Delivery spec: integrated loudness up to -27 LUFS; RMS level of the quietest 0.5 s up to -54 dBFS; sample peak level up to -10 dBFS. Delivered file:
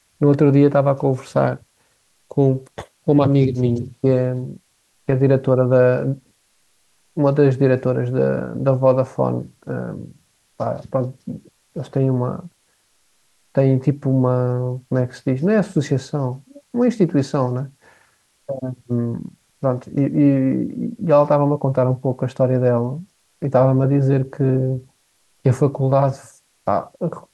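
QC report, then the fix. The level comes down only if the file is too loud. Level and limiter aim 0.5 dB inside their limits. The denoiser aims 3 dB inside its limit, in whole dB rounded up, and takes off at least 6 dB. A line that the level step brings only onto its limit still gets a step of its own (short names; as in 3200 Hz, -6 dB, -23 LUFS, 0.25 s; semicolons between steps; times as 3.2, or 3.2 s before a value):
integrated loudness -19.0 LUFS: fail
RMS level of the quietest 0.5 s -62 dBFS: OK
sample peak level -3.5 dBFS: fail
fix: gain -8.5 dB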